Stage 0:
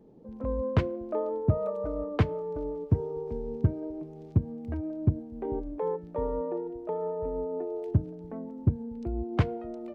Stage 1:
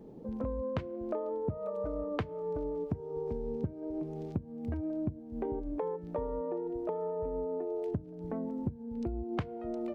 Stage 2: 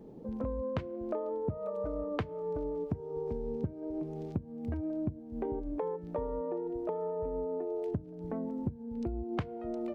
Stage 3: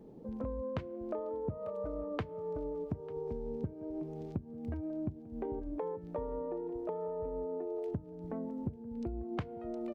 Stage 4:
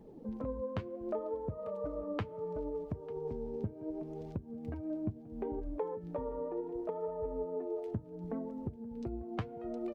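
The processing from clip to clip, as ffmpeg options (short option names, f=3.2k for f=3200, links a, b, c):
-af "acompressor=threshold=-37dB:ratio=16,volume=5.5dB"
-af anull
-af "aecho=1:1:896:0.0944,volume=-3dB"
-af "flanger=delay=0.9:depth=9.8:regen=44:speed=0.7:shape=triangular,volume=4dB"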